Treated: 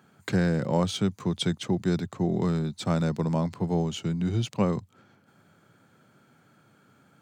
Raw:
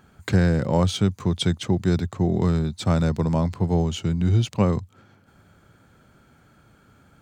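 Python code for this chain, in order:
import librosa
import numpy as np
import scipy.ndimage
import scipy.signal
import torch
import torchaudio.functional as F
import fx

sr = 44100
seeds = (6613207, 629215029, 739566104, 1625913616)

y = scipy.signal.sosfilt(scipy.signal.butter(4, 120.0, 'highpass', fs=sr, output='sos'), x)
y = y * 10.0 ** (-3.5 / 20.0)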